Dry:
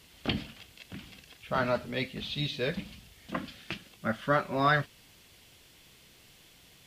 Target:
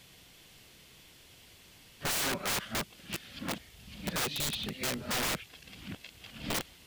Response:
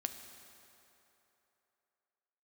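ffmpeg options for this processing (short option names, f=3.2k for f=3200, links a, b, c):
-af "areverse,acontrast=24,aeval=exprs='(mod(13.3*val(0)+1,2)-1)/13.3':c=same,volume=-4dB"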